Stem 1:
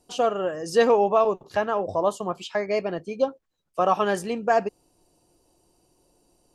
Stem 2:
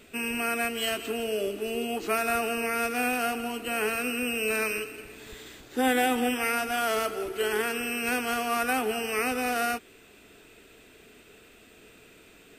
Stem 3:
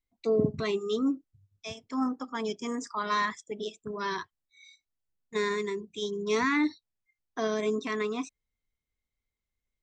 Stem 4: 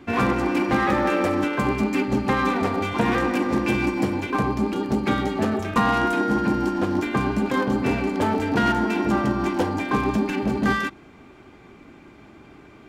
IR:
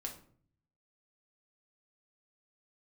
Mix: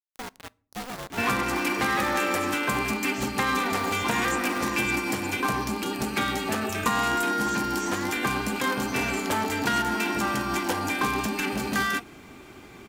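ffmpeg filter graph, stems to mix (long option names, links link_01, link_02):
-filter_complex "[0:a]acompressor=threshold=-27dB:ratio=2,acrusher=bits=3:mix=0:aa=0.000001,aeval=exprs='val(0)*sgn(sin(2*PI*260*n/s))':channel_layout=same,volume=-13.5dB,asplit=2[link_01][link_02];[link_02]volume=-17dB[link_03];[1:a]adelay=2250,volume=-11.5dB[link_04];[2:a]aexciter=amount=15.3:drive=9.6:freq=7100,adelay=1500,volume=-9dB[link_05];[3:a]aemphasis=mode=production:type=75kf,adelay=1100,volume=0.5dB[link_06];[4:a]atrim=start_sample=2205[link_07];[link_03][link_07]afir=irnorm=-1:irlink=0[link_08];[link_01][link_04][link_05][link_06][link_08]amix=inputs=5:normalize=0,acrossover=split=900|2700[link_09][link_10][link_11];[link_09]acompressor=threshold=-29dB:ratio=4[link_12];[link_10]acompressor=threshold=-25dB:ratio=4[link_13];[link_11]acompressor=threshold=-33dB:ratio=4[link_14];[link_12][link_13][link_14]amix=inputs=3:normalize=0"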